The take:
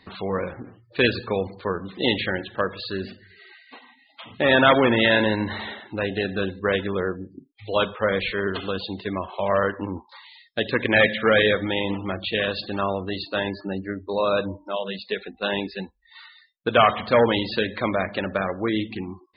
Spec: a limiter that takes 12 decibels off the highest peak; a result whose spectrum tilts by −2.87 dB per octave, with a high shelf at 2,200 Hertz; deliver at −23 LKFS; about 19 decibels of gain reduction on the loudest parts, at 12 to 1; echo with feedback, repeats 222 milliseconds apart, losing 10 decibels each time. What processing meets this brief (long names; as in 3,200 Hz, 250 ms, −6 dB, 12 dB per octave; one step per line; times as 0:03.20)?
high-shelf EQ 2,200 Hz +5 dB
downward compressor 12 to 1, threshold −30 dBFS
brickwall limiter −25.5 dBFS
repeating echo 222 ms, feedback 32%, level −10 dB
level +14 dB